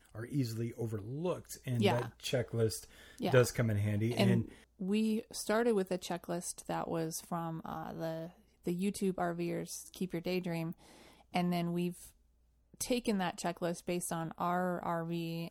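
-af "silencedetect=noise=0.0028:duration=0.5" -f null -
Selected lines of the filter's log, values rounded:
silence_start: 12.10
silence_end: 12.74 | silence_duration: 0.64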